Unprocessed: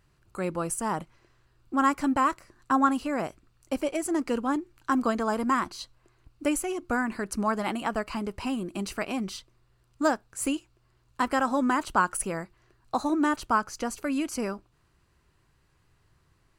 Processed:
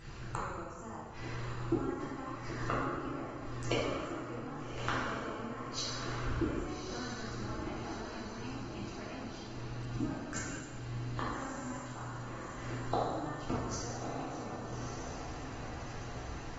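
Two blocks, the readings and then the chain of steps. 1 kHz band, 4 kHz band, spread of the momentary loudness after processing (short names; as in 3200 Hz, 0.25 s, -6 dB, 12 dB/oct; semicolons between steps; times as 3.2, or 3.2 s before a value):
-12.0 dB, -3.0 dB, 8 LU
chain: octaver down 1 oct, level -3 dB; compressor 4:1, threshold -38 dBFS, peak gain reduction 17.5 dB; flipped gate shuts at -36 dBFS, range -26 dB; diffused feedback echo 1.228 s, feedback 58%, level -6.5 dB; plate-style reverb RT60 1.5 s, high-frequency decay 0.75×, DRR -8 dB; gain +11.5 dB; AAC 24 kbps 48000 Hz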